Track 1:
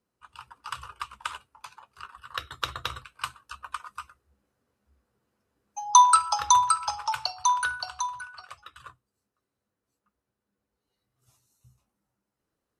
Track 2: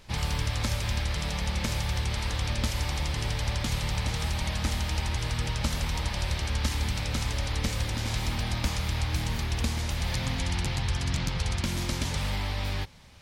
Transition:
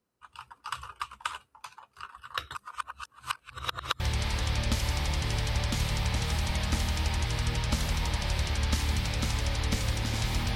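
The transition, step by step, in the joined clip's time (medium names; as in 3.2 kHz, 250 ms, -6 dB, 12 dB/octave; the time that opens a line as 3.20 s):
track 1
2.55–4.00 s: reverse
4.00 s: go over to track 2 from 1.92 s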